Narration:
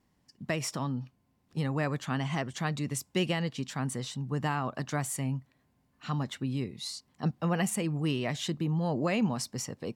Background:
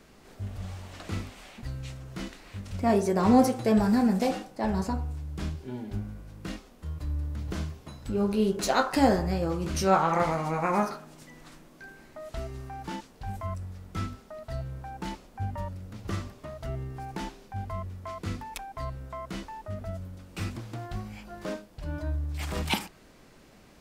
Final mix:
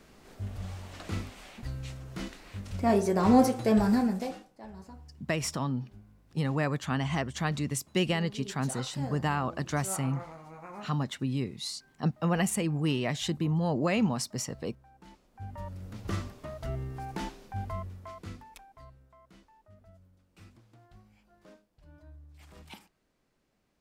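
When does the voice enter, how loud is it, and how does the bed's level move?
4.80 s, +1.5 dB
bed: 3.93 s -1 dB
4.68 s -18.5 dB
15.04 s -18.5 dB
15.84 s -0.5 dB
17.69 s -0.5 dB
19.13 s -20.5 dB

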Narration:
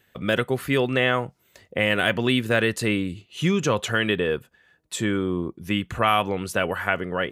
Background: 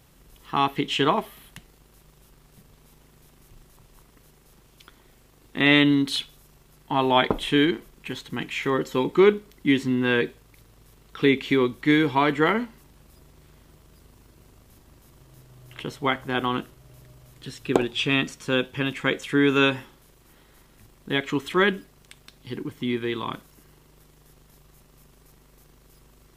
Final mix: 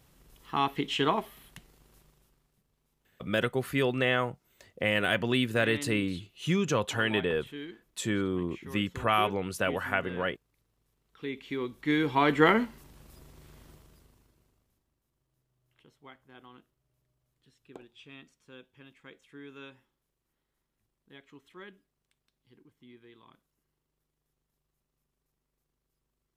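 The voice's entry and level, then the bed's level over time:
3.05 s, -5.5 dB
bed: 1.97 s -5.5 dB
2.62 s -21.5 dB
11.01 s -21.5 dB
12.42 s -0.5 dB
13.70 s -0.5 dB
14.96 s -27.5 dB

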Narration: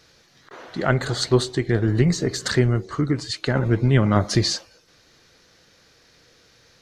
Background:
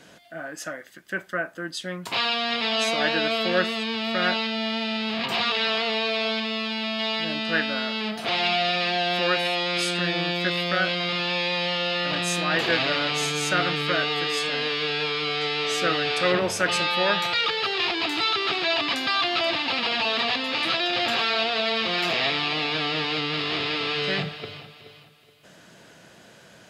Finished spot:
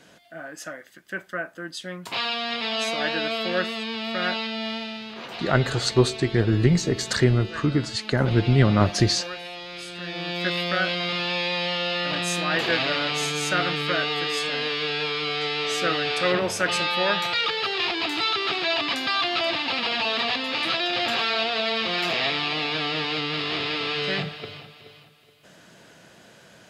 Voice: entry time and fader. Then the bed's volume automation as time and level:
4.65 s, -0.5 dB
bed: 4.71 s -2.5 dB
5.18 s -12 dB
9.89 s -12 dB
10.47 s -0.5 dB

